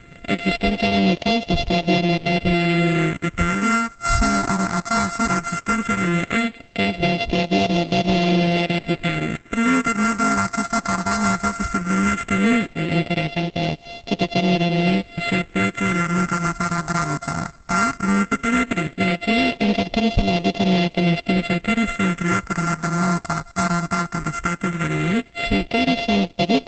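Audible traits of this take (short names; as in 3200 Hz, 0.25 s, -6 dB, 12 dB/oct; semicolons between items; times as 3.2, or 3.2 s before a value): a buzz of ramps at a fixed pitch in blocks of 64 samples; phasing stages 4, 0.16 Hz, lowest notch 510–1400 Hz; a quantiser's noise floor 10-bit, dither none; Opus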